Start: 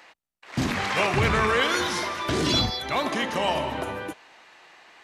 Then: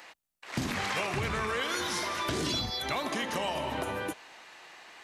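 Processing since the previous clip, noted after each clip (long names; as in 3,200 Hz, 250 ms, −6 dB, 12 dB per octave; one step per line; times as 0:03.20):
high-shelf EQ 6,200 Hz +7.5 dB
downward compressor, threshold −29 dBFS, peak gain reduction 11.5 dB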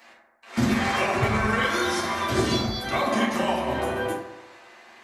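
convolution reverb RT60 1.2 s, pre-delay 4 ms, DRR −8.5 dB
expander for the loud parts 1.5 to 1, over −32 dBFS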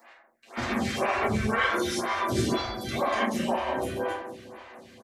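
repeating echo 461 ms, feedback 59%, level −18 dB
phaser with staggered stages 2 Hz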